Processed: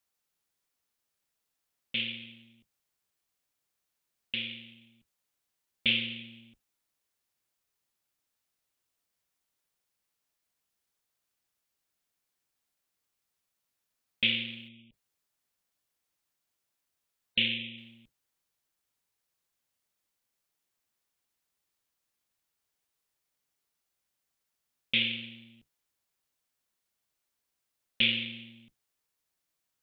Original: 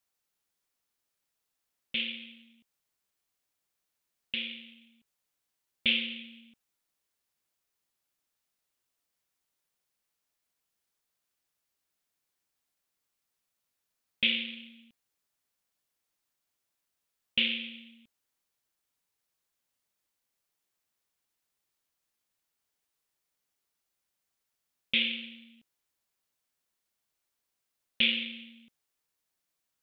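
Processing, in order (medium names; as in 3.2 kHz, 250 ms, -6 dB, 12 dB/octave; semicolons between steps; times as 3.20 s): octave divider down 1 oct, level -6 dB; 14.68–17.78 s: spectral gate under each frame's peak -30 dB strong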